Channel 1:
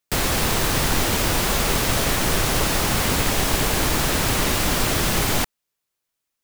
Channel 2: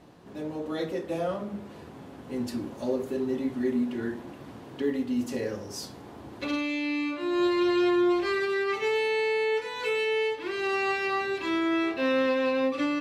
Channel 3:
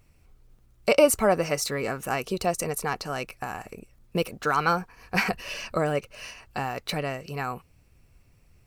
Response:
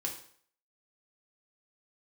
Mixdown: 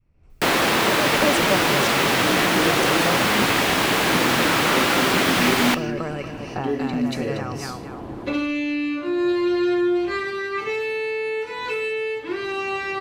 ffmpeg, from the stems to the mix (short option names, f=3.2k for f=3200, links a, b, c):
-filter_complex "[0:a]acrossover=split=3800[a][b];[b]acompressor=threshold=-37dB:ratio=4:attack=1:release=60[c];[a][c]amix=inputs=2:normalize=0,highpass=250,adelay=300,volume=-5.5dB,asplit=2[d][e];[e]volume=-14dB[f];[1:a]adelay=1850,volume=-2.5dB,asplit=2[g][h];[h]volume=-10dB[i];[2:a]lowpass=7k,volume=-4.5dB,asplit=2[j][k];[k]volume=-8.5dB[l];[g][j]amix=inputs=2:normalize=0,lowpass=f=1k:p=1,acompressor=threshold=-34dB:ratio=6,volume=0dB[m];[3:a]atrim=start_sample=2205[n];[f][i]amix=inputs=2:normalize=0[o];[o][n]afir=irnorm=-1:irlink=0[p];[l]aecho=0:1:235|470|705|940|1175:1|0.33|0.109|0.0359|0.0119[q];[d][m][p][q]amix=inputs=4:normalize=0,adynamicequalizer=threshold=0.00708:dfrequency=580:dqfactor=0.74:tfrequency=580:tqfactor=0.74:attack=5:release=100:ratio=0.375:range=2:mode=cutabove:tftype=bell,dynaudnorm=f=130:g=3:m=11dB"